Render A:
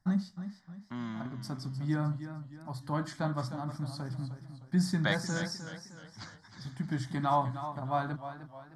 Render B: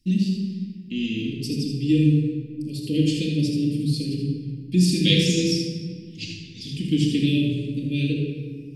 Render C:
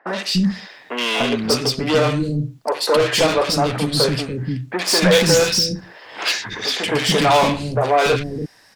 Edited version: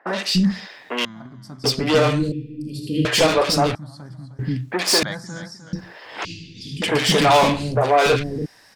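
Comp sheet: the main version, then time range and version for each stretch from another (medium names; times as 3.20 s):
C
1.05–1.64 s: from A
2.32–3.05 s: from B
3.75–4.39 s: from A
5.03–5.73 s: from A
6.25–6.82 s: from B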